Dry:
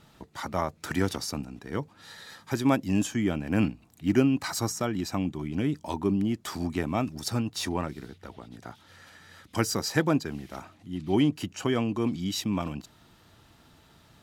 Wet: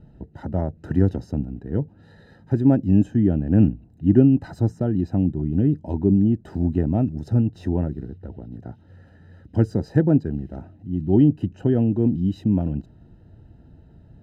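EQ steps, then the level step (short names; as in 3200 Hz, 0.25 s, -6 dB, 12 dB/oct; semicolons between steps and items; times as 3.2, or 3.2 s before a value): running mean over 39 samples; low shelf 140 Hz +10.5 dB; +6.0 dB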